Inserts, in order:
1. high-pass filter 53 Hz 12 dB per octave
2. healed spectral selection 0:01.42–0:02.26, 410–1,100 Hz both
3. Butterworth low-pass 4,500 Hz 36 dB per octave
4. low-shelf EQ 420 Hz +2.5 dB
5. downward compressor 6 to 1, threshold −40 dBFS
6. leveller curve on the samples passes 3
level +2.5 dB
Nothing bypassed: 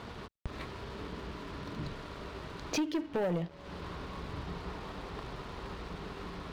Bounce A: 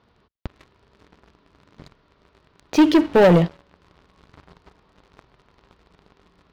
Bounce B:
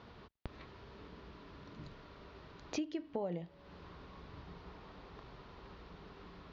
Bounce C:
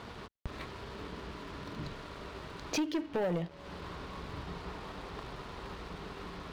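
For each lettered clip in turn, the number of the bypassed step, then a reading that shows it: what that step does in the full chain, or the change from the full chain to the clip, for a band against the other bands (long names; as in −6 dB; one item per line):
5, change in crest factor +2.0 dB
6, change in crest factor +8.5 dB
4, 125 Hz band −1.5 dB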